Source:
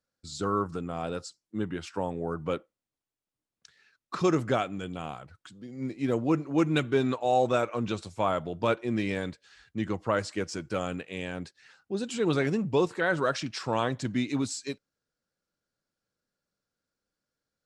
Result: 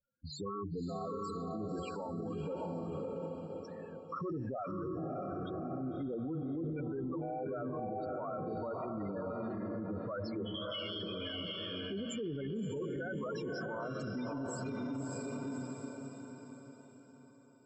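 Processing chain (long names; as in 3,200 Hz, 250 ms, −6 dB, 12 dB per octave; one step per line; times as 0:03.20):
mains-hum notches 60/120/180/240/300/360/420/480/540/600 Hz
0:10.46–0:11.03: voice inversion scrambler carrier 3,500 Hz
spectral peaks only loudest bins 8
on a send: feedback delay with all-pass diffusion 605 ms, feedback 42%, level −4 dB
on the sum: brickwall limiter −34.5 dBFS, peak gain reduction 20 dB
level +2.5 dB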